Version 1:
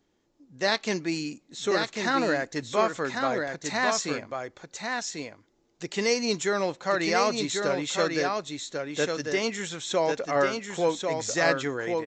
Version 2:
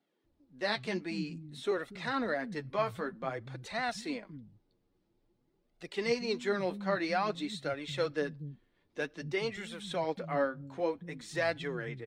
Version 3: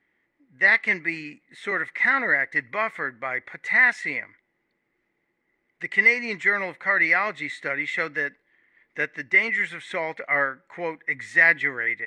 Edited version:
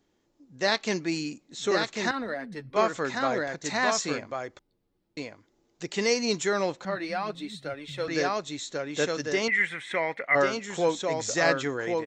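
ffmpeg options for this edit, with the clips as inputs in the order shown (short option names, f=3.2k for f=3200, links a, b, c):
-filter_complex "[1:a]asplit=3[a][b][c];[0:a]asplit=5[d][e][f][g][h];[d]atrim=end=2.112[i];[a]atrim=start=2.108:end=2.762[j];[e]atrim=start=2.758:end=4.592[k];[b]atrim=start=4.588:end=5.172[l];[f]atrim=start=5.168:end=6.852[m];[c]atrim=start=6.848:end=8.082[n];[g]atrim=start=8.078:end=9.482[o];[2:a]atrim=start=9.478:end=10.352[p];[h]atrim=start=10.348[q];[i][j]acrossfade=d=0.004:c1=hsin:c2=hsin[r];[r][k]acrossfade=d=0.004:c1=hsin:c2=hsin[s];[s][l]acrossfade=d=0.004:c1=hsin:c2=hsin[t];[t][m]acrossfade=d=0.004:c1=hsin:c2=hsin[u];[u][n]acrossfade=d=0.004:c1=hsin:c2=hsin[v];[v][o]acrossfade=d=0.004:c1=hsin:c2=hsin[w];[w][p]acrossfade=d=0.004:c1=hsin:c2=hsin[x];[x][q]acrossfade=d=0.004:c1=hsin:c2=hsin"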